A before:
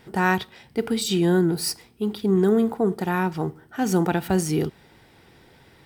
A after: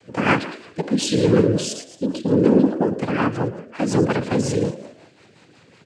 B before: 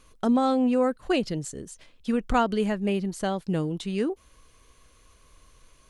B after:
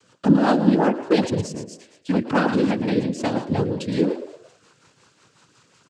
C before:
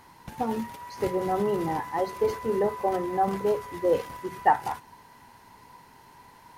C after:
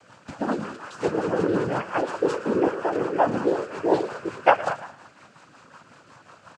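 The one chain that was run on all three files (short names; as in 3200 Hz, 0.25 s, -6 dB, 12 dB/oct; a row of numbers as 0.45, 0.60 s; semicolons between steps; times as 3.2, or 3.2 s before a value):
noise vocoder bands 8; frequency-shifting echo 0.112 s, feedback 41%, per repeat +53 Hz, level -12 dB; rotary speaker horn 5.5 Hz; normalise peaks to -3 dBFS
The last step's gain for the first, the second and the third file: +5.0, +7.0, +5.0 dB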